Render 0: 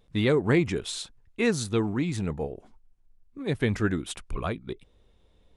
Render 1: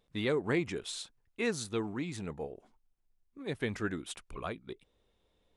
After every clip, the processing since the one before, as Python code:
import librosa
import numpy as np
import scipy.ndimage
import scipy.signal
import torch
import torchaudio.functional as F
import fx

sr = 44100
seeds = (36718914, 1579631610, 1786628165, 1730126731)

y = fx.low_shelf(x, sr, hz=180.0, db=-9.5)
y = y * 10.0 ** (-6.0 / 20.0)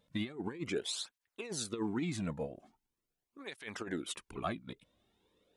y = fx.over_compress(x, sr, threshold_db=-35.0, ratio=-0.5)
y = fx.flanger_cancel(y, sr, hz=0.42, depth_ms=2.7)
y = y * 10.0 ** (2.0 / 20.0)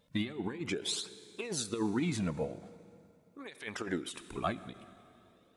y = fx.rev_plate(x, sr, seeds[0], rt60_s=2.7, hf_ratio=0.8, predelay_ms=0, drr_db=14.5)
y = fx.end_taper(y, sr, db_per_s=170.0)
y = y * 10.0 ** (3.5 / 20.0)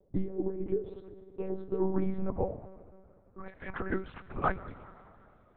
y = fx.filter_sweep_lowpass(x, sr, from_hz=500.0, to_hz=1500.0, start_s=0.79, end_s=4.03, q=1.7)
y = fx.lpc_monotone(y, sr, seeds[1], pitch_hz=190.0, order=8)
y = y * 10.0 ** (2.5 / 20.0)